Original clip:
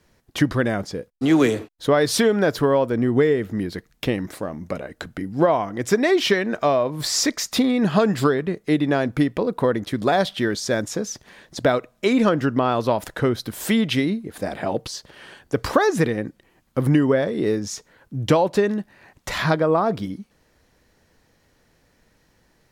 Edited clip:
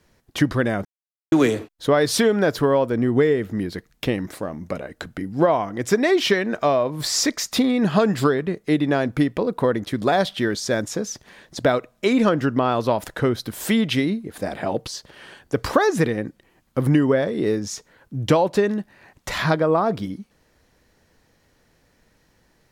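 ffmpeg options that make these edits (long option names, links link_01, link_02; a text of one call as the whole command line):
ffmpeg -i in.wav -filter_complex "[0:a]asplit=3[link_01][link_02][link_03];[link_01]atrim=end=0.85,asetpts=PTS-STARTPTS,afade=type=out:start_time=0.846:duration=0.004:curve=hsin[link_04];[link_02]atrim=start=0.85:end=1.32,asetpts=PTS-STARTPTS,volume=0[link_05];[link_03]atrim=start=1.32,asetpts=PTS-STARTPTS,afade=type=in:duration=0.004:curve=hsin[link_06];[link_04][link_05][link_06]concat=n=3:v=0:a=1" out.wav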